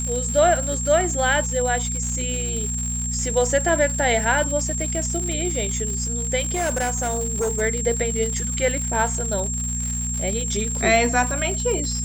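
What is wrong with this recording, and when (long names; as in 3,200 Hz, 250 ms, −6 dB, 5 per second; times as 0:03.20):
surface crackle 170 per second −27 dBFS
mains hum 60 Hz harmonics 4 −28 dBFS
whistle 7,500 Hz −26 dBFS
0:06.39–0:07.62: clipping −19 dBFS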